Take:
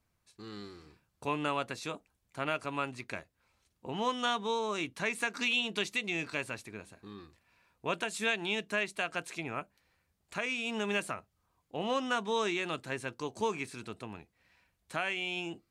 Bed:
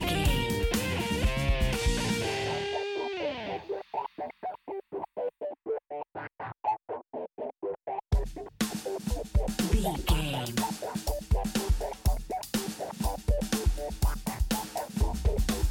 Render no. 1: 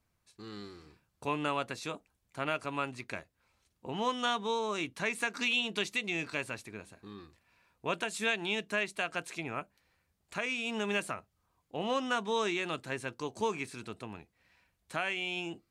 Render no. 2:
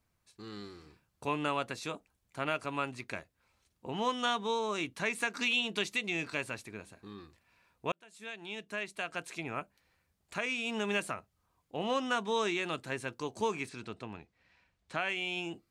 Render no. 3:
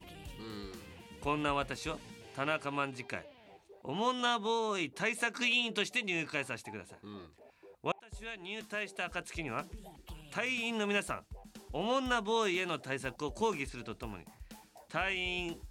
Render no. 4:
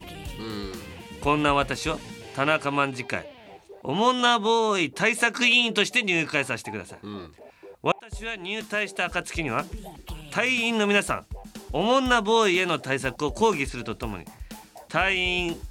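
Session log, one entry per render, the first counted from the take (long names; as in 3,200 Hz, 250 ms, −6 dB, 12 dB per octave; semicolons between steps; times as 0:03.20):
no processing that can be heard
0:07.92–0:09.57: fade in; 0:13.69–0:15.09: low-pass filter 6,100 Hz
mix in bed −22.5 dB
level +11 dB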